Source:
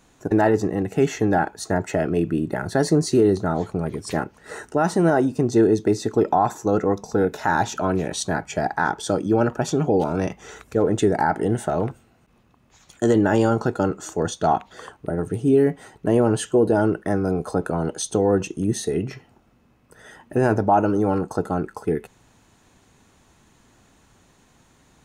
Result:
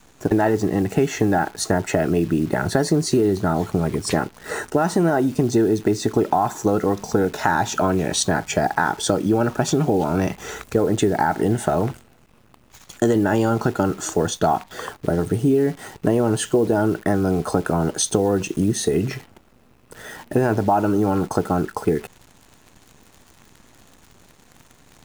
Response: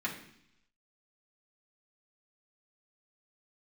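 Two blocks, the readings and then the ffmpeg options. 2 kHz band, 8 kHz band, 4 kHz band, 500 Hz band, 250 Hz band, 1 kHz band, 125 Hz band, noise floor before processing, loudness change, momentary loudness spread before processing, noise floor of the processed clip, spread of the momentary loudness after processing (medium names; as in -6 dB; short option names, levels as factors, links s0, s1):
+2.0 dB, +5.5 dB, +5.5 dB, 0.0 dB, +1.5 dB, +1.0 dB, +2.0 dB, -59 dBFS, +1.0 dB, 9 LU, -54 dBFS, 5 LU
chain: -af "adynamicequalizer=threshold=0.0141:dfrequency=500:dqfactor=4.5:tfrequency=500:tqfactor=4.5:attack=5:release=100:ratio=0.375:range=3.5:mode=cutabove:tftype=bell,acompressor=threshold=0.0631:ratio=4,acrusher=bits=9:dc=4:mix=0:aa=0.000001,volume=2.51"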